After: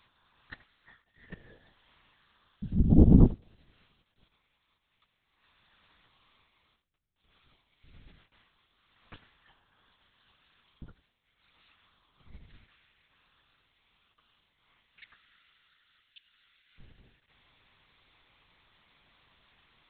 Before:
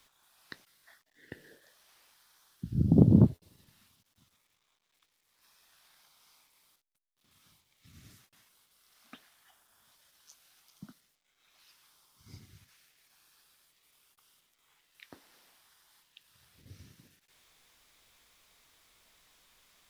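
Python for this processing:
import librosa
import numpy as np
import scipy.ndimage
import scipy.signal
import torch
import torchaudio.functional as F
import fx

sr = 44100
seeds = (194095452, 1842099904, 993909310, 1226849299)

y = fx.highpass(x, sr, hz=1300.0, slope=24, at=(15.1, 16.78))
y = y + 10.0 ** (-19.5 / 20.0) * np.pad(y, (int(89 * sr / 1000.0), 0))[:len(y)]
y = fx.lpc_vocoder(y, sr, seeds[0], excitation='whisper', order=8)
y = F.gain(torch.from_numpy(y), 2.5).numpy()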